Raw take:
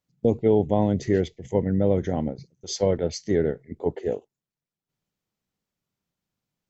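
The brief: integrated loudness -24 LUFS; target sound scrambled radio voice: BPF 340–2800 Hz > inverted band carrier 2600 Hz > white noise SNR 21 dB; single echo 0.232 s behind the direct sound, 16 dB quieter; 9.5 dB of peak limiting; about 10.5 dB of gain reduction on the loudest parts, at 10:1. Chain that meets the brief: compressor 10:1, threshold -26 dBFS; limiter -22.5 dBFS; BPF 340–2800 Hz; echo 0.232 s -16 dB; inverted band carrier 2600 Hz; white noise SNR 21 dB; gain +11.5 dB

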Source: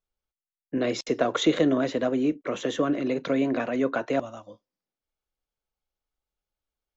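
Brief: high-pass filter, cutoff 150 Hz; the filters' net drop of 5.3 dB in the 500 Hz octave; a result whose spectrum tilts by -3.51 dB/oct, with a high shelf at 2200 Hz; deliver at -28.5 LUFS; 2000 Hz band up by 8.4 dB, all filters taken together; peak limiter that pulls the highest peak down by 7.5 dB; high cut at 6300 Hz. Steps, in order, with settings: HPF 150 Hz; LPF 6300 Hz; bell 500 Hz -7.5 dB; bell 2000 Hz +7.5 dB; high shelf 2200 Hz +7 dB; gain -0.5 dB; limiter -17.5 dBFS

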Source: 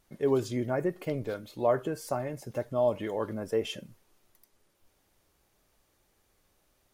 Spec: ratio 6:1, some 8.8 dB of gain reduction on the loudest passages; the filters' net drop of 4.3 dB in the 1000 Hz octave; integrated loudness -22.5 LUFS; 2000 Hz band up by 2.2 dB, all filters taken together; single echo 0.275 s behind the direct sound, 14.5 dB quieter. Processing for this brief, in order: bell 1000 Hz -7.5 dB; bell 2000 Hz +5.5 dB; compressor 6:1, threshold -32 dBFS; echo 0.275 s -14.5 dB; gain +15.5 dB

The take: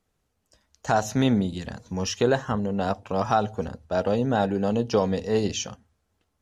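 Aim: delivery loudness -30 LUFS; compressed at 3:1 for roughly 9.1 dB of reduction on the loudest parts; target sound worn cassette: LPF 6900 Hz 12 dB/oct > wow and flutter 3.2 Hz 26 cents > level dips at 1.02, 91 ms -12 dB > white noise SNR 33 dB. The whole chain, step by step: compressor 3:1, threshold -29 dBFS; LPF 6900 Hz 12 dB/oct; wow and flutter 3.2 Hz 26 cents; level dips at 1.02, 91 ms -12 dB; white noise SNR 33 dB; gain +2.5 dB

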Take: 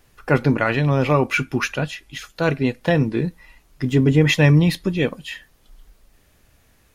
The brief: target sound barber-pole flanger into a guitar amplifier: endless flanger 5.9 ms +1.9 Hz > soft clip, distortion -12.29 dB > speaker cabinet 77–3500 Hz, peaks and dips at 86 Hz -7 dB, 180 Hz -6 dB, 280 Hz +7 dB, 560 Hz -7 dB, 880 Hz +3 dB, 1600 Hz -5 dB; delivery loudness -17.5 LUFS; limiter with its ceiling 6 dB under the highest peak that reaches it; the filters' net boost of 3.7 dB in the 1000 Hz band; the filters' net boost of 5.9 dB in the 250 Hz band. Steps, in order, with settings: bell 250 Hz +3.5 dB; bell 1000 Hz +4.5 dB; limiter -8 dBFS; endless flanger 5.9 ms +1.9 Hz; soft clip -17.5 dBFS; speaker cabinet 77–3500 Hz, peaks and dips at 86 Hz -7 dB, 180 Hz -6 dB, 280 Hz +7 dB, 560 Hz -7 dB, 880 Hz +3 dB, 1600 Hz -5 dB; gain +7.5 dB

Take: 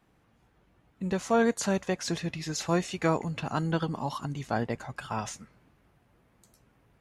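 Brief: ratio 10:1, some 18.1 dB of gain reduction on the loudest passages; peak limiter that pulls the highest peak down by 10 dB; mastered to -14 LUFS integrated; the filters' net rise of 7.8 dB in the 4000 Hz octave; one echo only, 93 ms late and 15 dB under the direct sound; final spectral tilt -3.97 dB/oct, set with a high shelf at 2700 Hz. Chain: high shelf 2700 Hz +6 dB; bell 4000 Hz +4.5 dB; compressor 10:1, threshold -38 dBFS; limiter -34 dBFS; echo 93 ms -15 dB; gain +30 dB

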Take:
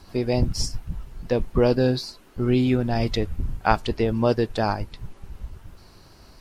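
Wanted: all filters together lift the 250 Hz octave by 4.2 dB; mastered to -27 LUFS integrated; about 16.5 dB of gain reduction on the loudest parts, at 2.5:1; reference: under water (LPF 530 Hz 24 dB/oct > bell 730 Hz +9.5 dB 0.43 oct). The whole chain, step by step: bell 250 Hz +4.5 dB; compressor 2.5:1, threshold -39 dBFS; LPF 530 Hz 24 dB/oct; bell 730 Hz +9.5 dB 0.43 oct; gain +11 dB

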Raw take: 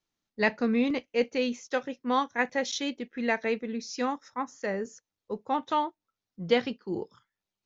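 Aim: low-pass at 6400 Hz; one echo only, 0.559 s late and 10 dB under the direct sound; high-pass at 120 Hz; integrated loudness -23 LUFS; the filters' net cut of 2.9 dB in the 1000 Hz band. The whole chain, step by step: HPF 120 Hz; LPF 6400 Hz; bell 1000 Hz -3.5 dB; echo 0.559 s -10 dB; gain +8 dB

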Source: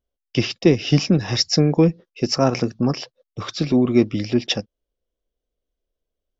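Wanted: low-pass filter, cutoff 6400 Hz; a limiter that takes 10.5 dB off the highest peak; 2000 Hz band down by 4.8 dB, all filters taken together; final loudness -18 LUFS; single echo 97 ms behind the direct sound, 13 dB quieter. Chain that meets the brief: LPF 6400 Hz; bell 2000 Hz -6.5 dB; limiter -13.5 dBFS; echo 97 ms -13 dB; gain +7 dB

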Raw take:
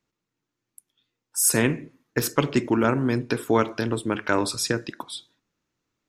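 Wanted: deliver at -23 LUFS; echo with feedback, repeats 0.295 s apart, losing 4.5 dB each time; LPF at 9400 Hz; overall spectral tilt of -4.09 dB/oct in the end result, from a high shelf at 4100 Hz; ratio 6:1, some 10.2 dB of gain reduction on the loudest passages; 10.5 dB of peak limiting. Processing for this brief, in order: LPF 9400 Hz; high shelf 4100 Hz -4.5 dB; compressor 6:1, threshold -27 dBFS; limiter -23 dBFS; feedback echo 0.295 s, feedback 60%, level -4.5 dB; gain +11 dB

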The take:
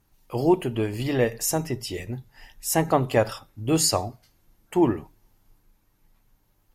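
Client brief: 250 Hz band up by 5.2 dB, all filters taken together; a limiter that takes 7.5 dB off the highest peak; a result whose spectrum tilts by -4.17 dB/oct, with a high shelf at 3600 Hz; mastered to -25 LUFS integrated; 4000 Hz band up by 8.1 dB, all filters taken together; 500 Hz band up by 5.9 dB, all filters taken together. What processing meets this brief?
bell 250 Hz +4.5 dB; bell 500 Hz +6 dB; high shelf 3600 Hz +4.5 dB; bell 4000 Hz +7 dB; gain -3.5 dB; limiter -12 dBFS

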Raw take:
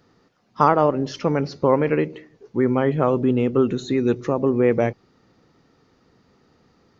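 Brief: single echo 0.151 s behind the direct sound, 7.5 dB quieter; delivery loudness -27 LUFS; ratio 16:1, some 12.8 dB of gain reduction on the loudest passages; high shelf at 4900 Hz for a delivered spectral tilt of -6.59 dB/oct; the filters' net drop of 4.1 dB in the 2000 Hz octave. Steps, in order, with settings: bell 2000 Hz -4 dB; high shelf 4900 Hz -8.5 dB; compressor 16:1, threshold -25 dBFS; echo 0.151 s -7.5 dB; gain +3.5 dB

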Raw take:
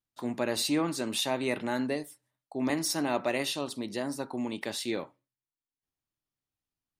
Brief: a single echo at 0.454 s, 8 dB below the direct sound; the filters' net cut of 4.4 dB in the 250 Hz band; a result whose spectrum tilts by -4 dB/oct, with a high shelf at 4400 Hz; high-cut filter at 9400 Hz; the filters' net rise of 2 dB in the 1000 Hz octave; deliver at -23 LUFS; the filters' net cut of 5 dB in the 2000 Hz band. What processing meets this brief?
LPF 9400 Hz; bell 250 Hz -5.5 dB; bell 1000 Hz +4.5 dB; bell 2000 Hz -6.5 dB; high shelf 4400 Hz -5.5 dB; echo 0.454 s -8 dB; gain +10.5 dB

